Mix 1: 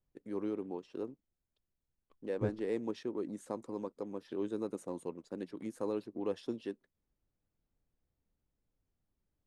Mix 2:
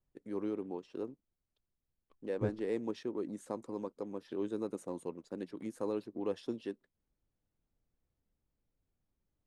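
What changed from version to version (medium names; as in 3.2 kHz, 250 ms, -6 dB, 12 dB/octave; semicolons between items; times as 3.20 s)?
no change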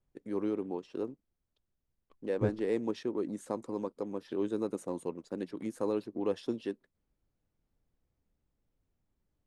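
first voice +4.0 dB; second voice +4.0 dB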